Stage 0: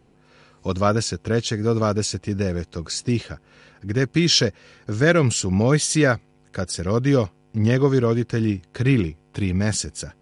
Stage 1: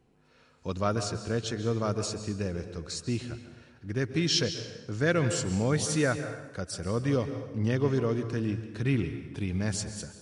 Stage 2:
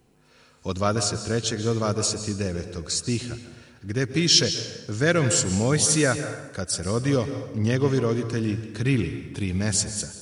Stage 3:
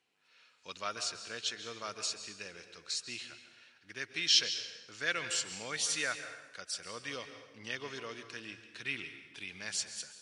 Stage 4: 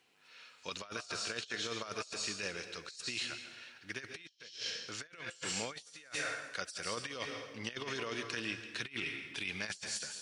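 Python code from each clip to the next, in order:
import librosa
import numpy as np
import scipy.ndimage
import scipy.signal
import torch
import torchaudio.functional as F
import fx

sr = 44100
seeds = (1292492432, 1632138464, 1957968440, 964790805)

y1 = fx.rev_plate(x, sr, seeds[0], rt60_s=1.2, hf_ratio=0.75, predelay_ms=120, drr_db=9.0)
y1 = y1 * librosa.db_to_amplitude(-9.0)
y2 = fx.high_shelf(y1, sr, hz=5400.0, db=11.5)
y2 = y2 * librosa.db_to_amplitude(4.5)
y3 = fx.bandpass_q(y2, sr, hz=2800.0, q=1.2)
y3 = y3 * librosa.db_to_amplitude(-3.5)
y4 = fx.over_compress(y3, sr, threshold_db=-44.0, ratio=-0.5)
y4 = y4 * librosa.db_to_amplitude(2.5)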